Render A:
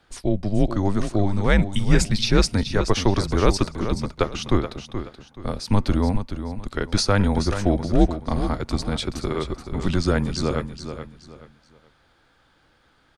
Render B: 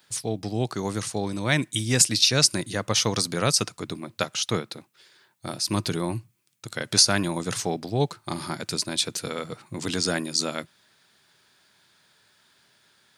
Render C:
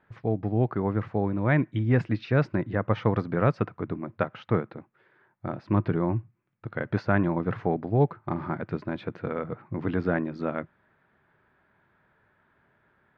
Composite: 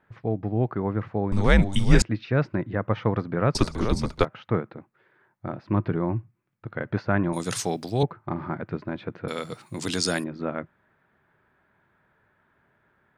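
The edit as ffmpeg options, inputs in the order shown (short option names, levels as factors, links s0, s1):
-filter_complex "[0:a]asplit=2[s0][s1];[1:a]asplit=2[s2][s3];[2:a]asplit=5[s4][s5][s6][s7][s8];[s4]atrim=end=1.322[s9];[s0]atrim=start=1.318:end=2.022[s10];[s5]atrim=start=2.018:end=3.552[s11];[s1]atrim=start=3.548:end=4.252[s12];[s6]atrim=start=4.248:end=7.332[s13];[s2]atrim=start=7.328:end=8.032[s14];[s7]atrim=start=8.028:end=9.282[s15];[s3]atrim=start=9.278:end=10.242[s16];[s8]atrim=start=10.238[s17];[s9][s10]acrossfade=d=0.004:c1=hsin:c2=hsin[s18];[s18][s11]acrossfade=d=0.004:c1=hsin:c2=hsin[s19];[s19][s12]acrossfade=d=0.004:c1=hsin:c2=hsin[s20];[s20][s13]acrossfade=d=0.004:c1=hsin:c2=hsin[s21];[s21][s14]acrossfade=d=0.004:c1=hsin:c2=hsin[s22];[s22][s15]acrossfade=d=0.004:c1=hsin:c2=hsin[s23];[s23][s16]acrossfade=d=0.004:c1=hsin:c2=hsin[s24];[s24][s17]acrossfade=d=0.004:c1=hsin:c2=hsin"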